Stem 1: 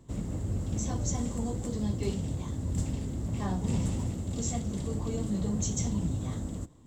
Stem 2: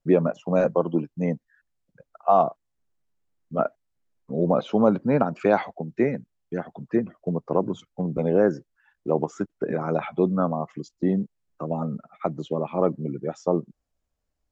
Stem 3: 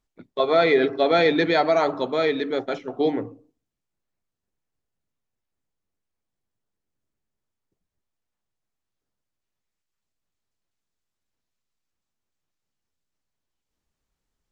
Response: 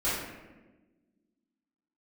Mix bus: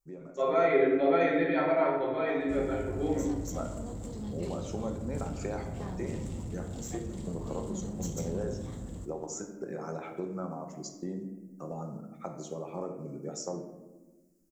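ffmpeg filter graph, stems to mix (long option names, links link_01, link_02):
-filter_complex "[0:a]asoftclip=type=tanh:threshold=-29.5dB,adelay=2400,volume=-5dB,asplit=2[link_01][link_02];[link_02]volume=-18.5dB[link_03];[1:a]acompressor=threshold=-23dB:ratio=6,aexciter=amount=14.6:drive=3.6:freq=5000,volume=-12dB,afade=type=in:start_time=2.43:duration=0.27:silence=0.334965,asplit=2[link_04][link_05];[link_05]volume=-12.5dB[link_06];[2:a]lowpass=frequency=2800:width=0.5412,lowpass=frequency=2800:width=1.3066,aecho=1:1:7.5:0.46,volume=-16.5dB,asplit=2[link_07][link_08];[link_08]volume=-3dB[link_09];[3:a]atrim=start_sample=2205[link_10];[link_03][link_06][link_09]amix=inputs=3:normalize=0[link_11];[link_11][link_10]afir=irnorm=-1:irlink=0[link_12];[link_01][link_04][link_07][link_12]amix=inputs=4:normalize=0"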